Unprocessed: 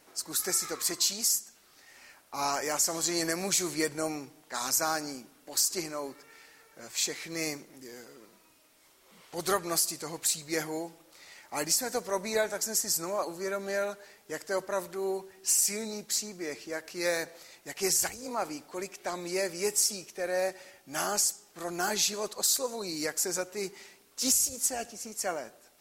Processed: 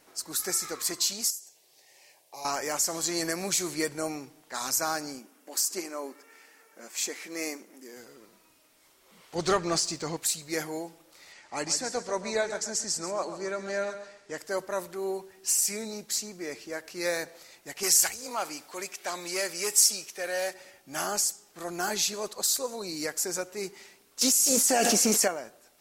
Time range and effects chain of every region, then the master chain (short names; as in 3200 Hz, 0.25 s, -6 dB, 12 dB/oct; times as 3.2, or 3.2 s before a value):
1.3–2.45 HPF 130 Hz 24 dB/oct + compressor 2.5:1, threshold -36 dBFS + fixed phaser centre 560 Hz, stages 4
5.19–7.97 brick-wall FIR high-pass 180 Hz + bell 4000 Hz -5.5 dB 0.54 oct
9.35–10.17 LPF 7100 Hz 24 dB/oct + low shelf 200 Hz +7 dB + sample leveller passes 1
11.32–14.38 LPF 8200 Hz 24 dB/oct + feedback echo 0.136 s, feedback 28%, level -11 dB
17.83–20.54 tilt shelf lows -6 dB, about 640 Hz + core saturation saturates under 3600 Hz
24.21–25.28 brick-wall FIR high-pass 150 Hz + fast leveller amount 100%
whole clip: dry